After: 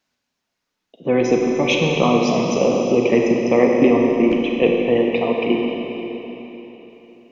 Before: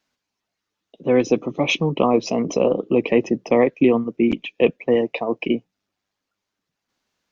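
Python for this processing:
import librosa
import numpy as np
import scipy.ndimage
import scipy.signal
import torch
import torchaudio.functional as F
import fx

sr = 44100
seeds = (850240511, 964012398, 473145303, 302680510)

y = fx.rev_schroeder(x, sr, rt60_s=3.7, comb_ms=33, drr_db=-0.5)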